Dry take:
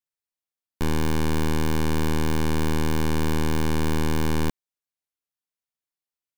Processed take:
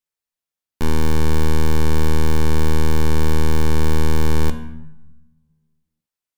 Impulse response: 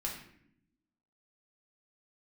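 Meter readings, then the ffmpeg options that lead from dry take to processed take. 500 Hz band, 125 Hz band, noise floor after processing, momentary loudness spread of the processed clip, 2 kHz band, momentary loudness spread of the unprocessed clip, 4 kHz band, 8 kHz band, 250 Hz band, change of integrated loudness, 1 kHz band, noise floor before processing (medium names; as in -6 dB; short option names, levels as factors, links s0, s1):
+4.5 dB, +6.5 dB, under -85 dBFS, 5 LU, +2.0 dB, 2 LU, +2.0 dB, +3.0 dB, +2.0 dB, +4.5 dB, +3.0 dB, under -85 dBFS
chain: -filter_complex "[0:a]asplit=2[s0][s1];[1:a]atrim=start_sample=2205,asetrate=30429,aresample=44100[s2];[s1][s2]afir=irnorm=-1:irlink=0,volume=0.398[s3];[s0][s3]amix=inputs=2:normalize=0"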